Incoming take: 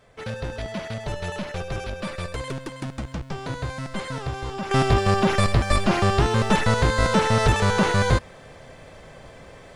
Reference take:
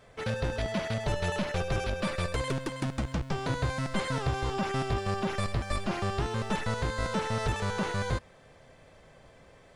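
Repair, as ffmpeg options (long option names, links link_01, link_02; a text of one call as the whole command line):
ffmpeg -i in.wav -af "asetnsamples=nb_out_samples=441:pad=0,asendcmd='4.71 volume volume -11dB',volume=0dB" out.wav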